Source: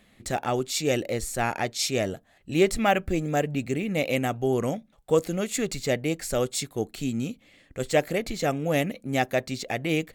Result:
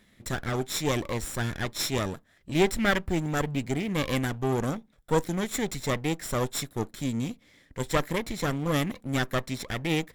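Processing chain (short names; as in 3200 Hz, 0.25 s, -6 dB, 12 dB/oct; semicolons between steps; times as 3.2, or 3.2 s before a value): minimum comb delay 0.55 ms; gain -1 dB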